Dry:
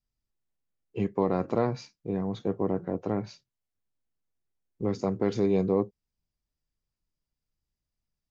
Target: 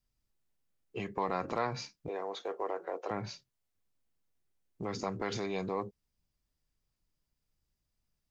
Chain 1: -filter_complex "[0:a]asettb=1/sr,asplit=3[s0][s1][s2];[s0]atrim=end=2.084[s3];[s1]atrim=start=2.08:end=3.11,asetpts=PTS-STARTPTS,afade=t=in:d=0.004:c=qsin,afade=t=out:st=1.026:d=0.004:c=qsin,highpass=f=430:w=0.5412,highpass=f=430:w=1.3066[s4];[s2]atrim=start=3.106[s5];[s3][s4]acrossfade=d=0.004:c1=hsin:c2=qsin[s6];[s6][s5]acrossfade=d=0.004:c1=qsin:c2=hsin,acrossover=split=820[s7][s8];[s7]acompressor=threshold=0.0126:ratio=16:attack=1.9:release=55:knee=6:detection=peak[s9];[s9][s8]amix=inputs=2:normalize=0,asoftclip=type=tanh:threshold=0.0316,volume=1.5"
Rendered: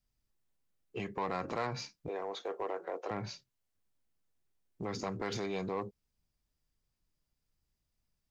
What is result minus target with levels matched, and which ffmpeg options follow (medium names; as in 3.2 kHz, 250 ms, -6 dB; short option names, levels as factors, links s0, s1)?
saturation: distortion +18 dB
-filter_complex "[0:a]asettb=1/sr,asplit=3[s0][s1][s2];[s0]atrim=end=2.084[s3];[s1]atrim=start=2.08:end=3.11,asetpts=PTS-STARTPTS,afade=t=in:d=0.004:c=qsin,afade=t=out:st=1.026:d=0.004:c=qsin,highpass=f=430:w=0.5412,highpass=f=430:w=1.3066[s4];[s2]atrim=start=3.106[s5];[s3][s4]acrossfade=d=0.004:c1=hsin:c2=qsin[s6];[s6][s5]acrossfade=d=0.004:c1=qsin:c2=hsin,acrossover=split=820[s7][s8];[s7]acompressor=threshold=0.0126:ratio=16:attack=1.9:release=55:knee=6:detection=peak[s9];[s9][s8]amix=inputs=2:normalize=0,asoftclip=type=tanh:threshold=0.119,volume=1.5"